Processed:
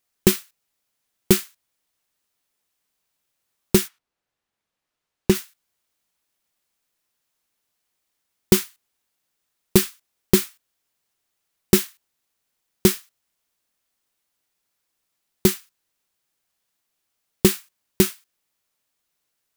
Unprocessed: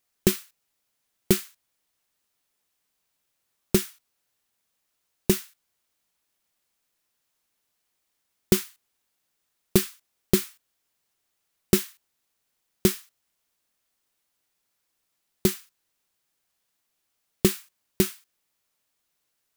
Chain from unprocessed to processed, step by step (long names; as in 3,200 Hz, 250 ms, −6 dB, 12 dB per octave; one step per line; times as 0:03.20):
0:03.87–0:05.34: low-pass filter 1,600 Hz → 3,600 Hz 6 dB per octave
leveller curve on the samples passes 1
level +2 dB